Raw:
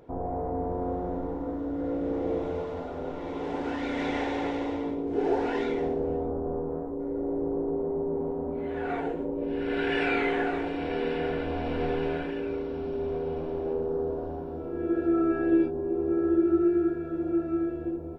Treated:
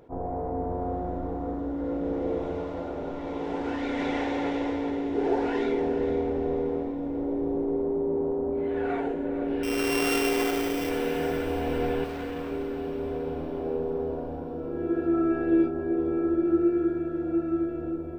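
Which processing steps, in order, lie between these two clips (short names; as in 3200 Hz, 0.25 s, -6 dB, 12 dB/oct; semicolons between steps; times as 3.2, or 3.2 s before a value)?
9.63–10.89 sample sorter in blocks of 16 samples; 12.04–12.51 hard clip -35.5 dBFS, distortion -22 dB; on a send: diffused feedback echo 0.471 s, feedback 49%, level -9 dB; on the sum: attack slew limiter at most 390 dB/s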